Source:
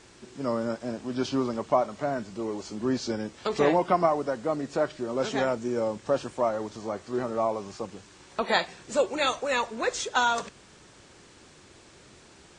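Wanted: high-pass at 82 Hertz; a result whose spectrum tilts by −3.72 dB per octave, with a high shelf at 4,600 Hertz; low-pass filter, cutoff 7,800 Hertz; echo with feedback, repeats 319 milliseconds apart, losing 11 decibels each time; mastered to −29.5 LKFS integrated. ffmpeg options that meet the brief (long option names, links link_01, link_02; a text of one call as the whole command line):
ffmpeg -i in.wav -af "highpass=82,lowpass=7800,highshelf=frequency=4600:gain=7,aecho=1:1:319|638|957:0.282|0.0789|0.0221,volume=-1.5dB" out.wav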